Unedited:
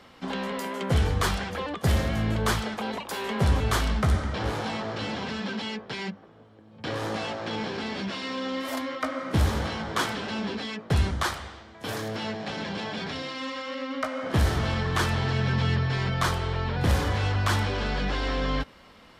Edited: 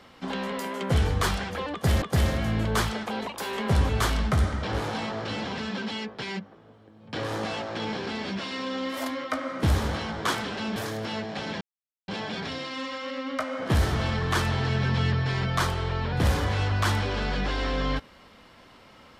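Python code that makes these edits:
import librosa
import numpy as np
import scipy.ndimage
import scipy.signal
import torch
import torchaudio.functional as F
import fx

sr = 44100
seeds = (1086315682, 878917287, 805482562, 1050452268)

y = fx.edit(x, sr, fx.repeat(start_s=1.73, length_s=0.29, count=2),
    fx.cut(start_s=10.47, length_s=1.4),
    fx.insert_silence(at_s=12.72, length_s=0.47), tone=tone)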